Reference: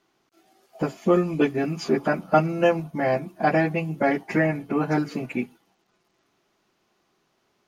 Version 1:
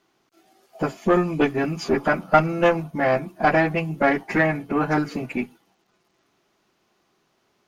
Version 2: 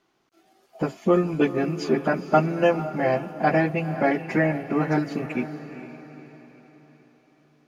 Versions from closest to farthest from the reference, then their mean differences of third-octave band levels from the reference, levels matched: 1, 2; 1.5, 3.0 dB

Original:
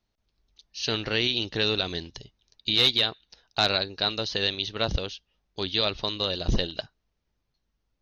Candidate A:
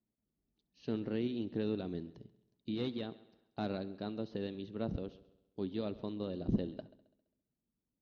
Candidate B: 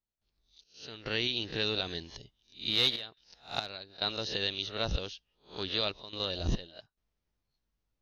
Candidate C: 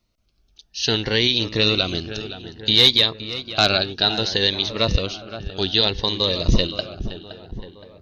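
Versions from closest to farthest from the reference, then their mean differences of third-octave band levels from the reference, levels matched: C, B, A; 3.0, 4.0, 7.5 dB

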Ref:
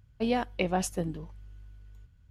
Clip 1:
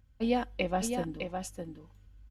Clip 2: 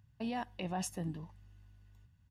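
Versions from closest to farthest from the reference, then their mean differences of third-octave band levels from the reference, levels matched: 2, 1; 3.0, 6.0 dB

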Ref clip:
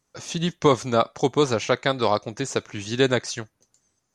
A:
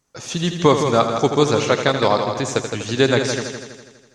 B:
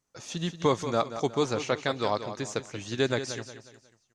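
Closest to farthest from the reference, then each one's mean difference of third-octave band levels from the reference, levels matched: B, A; 3.0, 5.5 dB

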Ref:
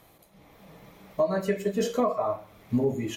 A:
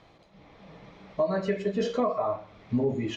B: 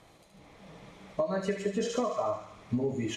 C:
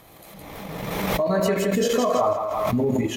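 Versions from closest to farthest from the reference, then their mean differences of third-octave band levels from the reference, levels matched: A, B, C; 3.5, 4.5, 8.0 dB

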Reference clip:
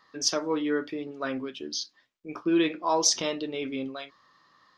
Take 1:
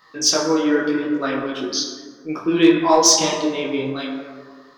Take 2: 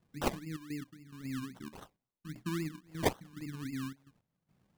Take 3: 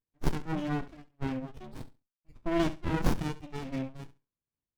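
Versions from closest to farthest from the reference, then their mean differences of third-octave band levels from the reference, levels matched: 1, 3, 2; 6.0, 11.0, 15.0 dB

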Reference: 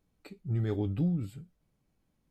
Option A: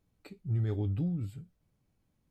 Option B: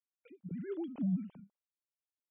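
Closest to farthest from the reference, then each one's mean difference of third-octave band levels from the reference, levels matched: A, B; 2.0, 9.0 dB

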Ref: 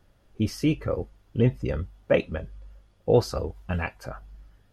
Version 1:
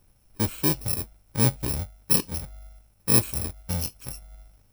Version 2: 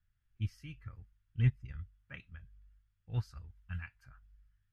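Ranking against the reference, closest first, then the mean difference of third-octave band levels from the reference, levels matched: 2, 1; 9.0, 12.5 dB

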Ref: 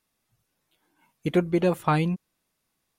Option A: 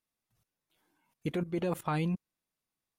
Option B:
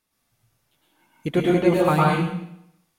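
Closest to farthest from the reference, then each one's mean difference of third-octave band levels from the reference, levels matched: A, B; 2.5, 8.5 dB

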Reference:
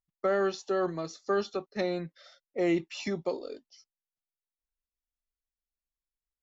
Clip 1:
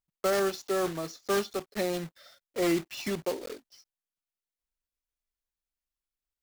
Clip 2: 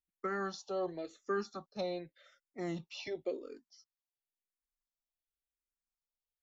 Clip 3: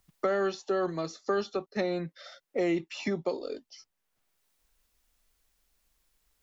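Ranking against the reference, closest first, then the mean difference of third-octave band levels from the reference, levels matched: 3, 2, 1; 1.5, 3.0, 7.5 dB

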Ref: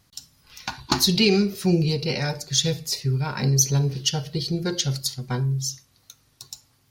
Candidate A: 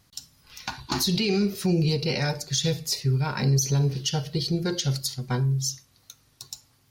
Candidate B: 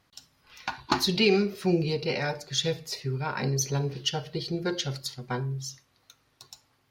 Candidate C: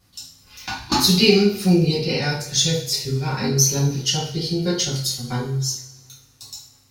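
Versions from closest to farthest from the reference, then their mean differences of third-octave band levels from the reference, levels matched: A, B, C; 1.5, 3.5, 5.5 dB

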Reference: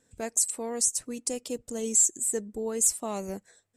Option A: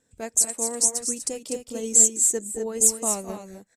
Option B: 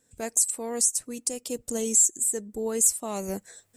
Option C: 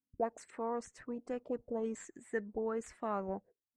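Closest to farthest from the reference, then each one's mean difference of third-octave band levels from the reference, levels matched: B, A, C; 2.0, 5.5, 8.5 dB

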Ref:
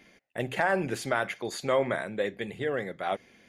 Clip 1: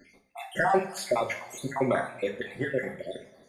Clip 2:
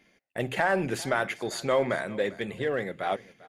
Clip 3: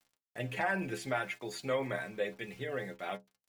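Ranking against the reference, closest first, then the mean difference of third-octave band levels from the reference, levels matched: 2, 3, 1; 2.0, 4.5, 7.0 dB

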